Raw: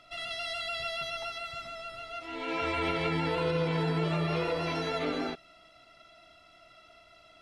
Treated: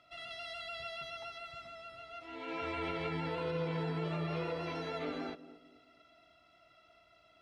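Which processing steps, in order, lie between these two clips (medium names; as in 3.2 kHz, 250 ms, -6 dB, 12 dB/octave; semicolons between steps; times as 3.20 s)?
high-pass 43 Hz; treble shelf 5.8 kHz -9 dB; on a send: band-passed feedback delay 228 ms, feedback 41%, band-pass 300 Hz, level -13 dB; on the sum: trim -7 dB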